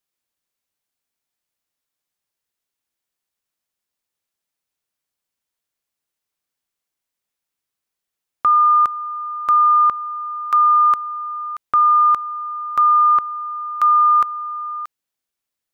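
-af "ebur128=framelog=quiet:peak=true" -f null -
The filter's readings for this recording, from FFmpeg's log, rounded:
Integrated loudness:
  I:         -16.0 LUFS
  Threshold: -26.4 LUFS
Loudness range:
  LRA:         4.9 LU
  Threshold: -37.1 LUFS
  LRA low:   -20.8 LUFS
  LRA high:  -15.9 LUFS
True peak:
  Peak:       -9.5 dBFS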